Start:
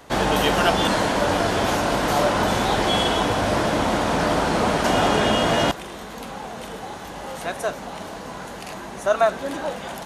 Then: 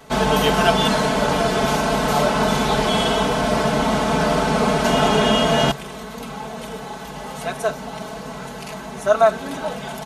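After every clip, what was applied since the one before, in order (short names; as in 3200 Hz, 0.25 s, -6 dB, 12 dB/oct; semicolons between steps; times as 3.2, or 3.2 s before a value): bell 140 Hz +12.5 dB 0.23 oct; notch 1800 Hz, Q 16; comb 4.6 ms, depth 93%; gain -1 dB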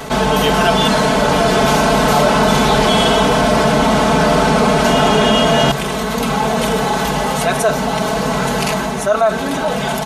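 AGC gain up to 10.5 dB; in parallel at -12 dB: hard clip -14 dBFS, distortion -9 dB; on the sum: fast leveller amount 50%; gain -2.5 dB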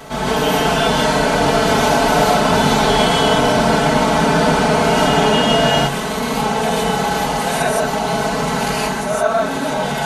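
non-linear reverb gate 0.19 s rising, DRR -6.5 dB; gain -8.5 dB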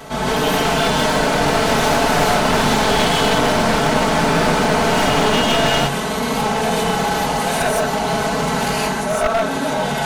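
one-sided fold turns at -13.5 dBFS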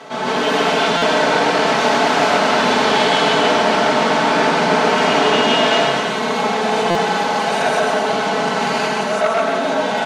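BPF 260–5300 Hz; on a send: bouncing-ball echo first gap 0.13 s, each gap 0.75×, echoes 5; on the sum: stuck buffer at 0.97/6.9, samples 256, times 8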